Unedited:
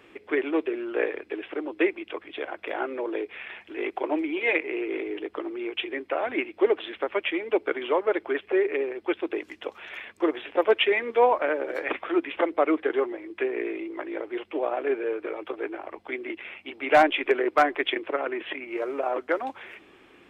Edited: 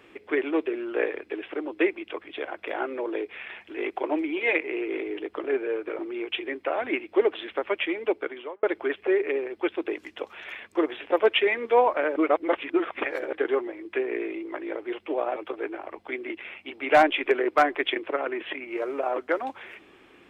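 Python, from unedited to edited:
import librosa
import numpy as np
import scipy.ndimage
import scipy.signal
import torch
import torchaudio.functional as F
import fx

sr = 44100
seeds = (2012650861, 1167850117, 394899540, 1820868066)

y = fx.edit(x, sr, fx.fade_out_span(start_s=7.46, length_s=0.62),
    fx.reverse_span(start_s=11.61, length_s=1.17),
    fx.move(start_s=14.81, length_s=0.55, to_s=5.44), tone=tone)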